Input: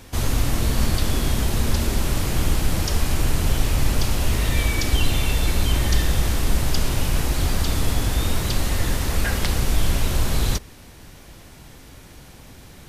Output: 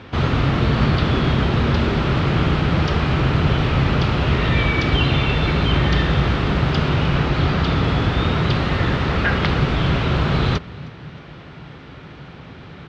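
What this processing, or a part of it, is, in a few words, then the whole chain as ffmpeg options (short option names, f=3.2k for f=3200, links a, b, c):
frequency-shifting delay pedal into a guitar cabinet: -filter_complex "[0:a]asettb=1/sr,asplit=3[a][b][c];[a]atrim=end=7.164[d];[b]atrim=start=7.16:end=7.83,asetpts=PTS-STARTPTS,afade=t=in:d=0.004:c=qsin,afade=t=out:st=0.666:d=0.004:c=qsin,lowpass=f=8.3k:w=0.5412,lowpass=f=8.3k:w=1.3066[e];[c]atrim=start=7.826[f];[d][e]acrossfade=d=0.004:c1=hsin:c2=qsin[g];[g][f]acrossfade=d=0.004:c1=qsin:c2=hsin,asplit=3[h][i][j];[i]adelay=313,afreqshift=51,volume=-23dB[k];[j]adelay=626,afreqshift=102,volume=-32.1dB[l];[h][k][l]amix=inputs=3:normalize=0,highpass=80,equalizer=f=150:t=q:w=4:g=8,equalizer=f=400:t=q:w=4:g=3,equalizer=f=1.3k:t=q:w=4:g=6,lowpass=f=3.6k:w=0.5412,lowpass=f=3.6k:w=1.3066,volume=6dB"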